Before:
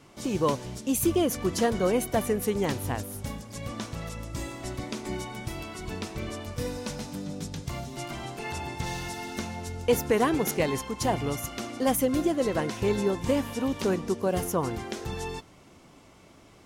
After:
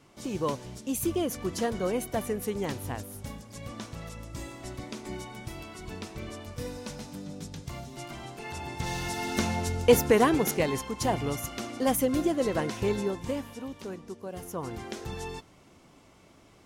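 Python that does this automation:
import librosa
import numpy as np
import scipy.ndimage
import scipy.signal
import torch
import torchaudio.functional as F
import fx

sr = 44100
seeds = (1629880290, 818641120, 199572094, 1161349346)

y = fx.gain(x, sr, db=fx.line((8.48, -4.5), (9.5, 7.0), (10.66, -1.0), (12.8, -1.0), (13.84, -12.5), (14.34, -12.5), (14.85, -3.0)))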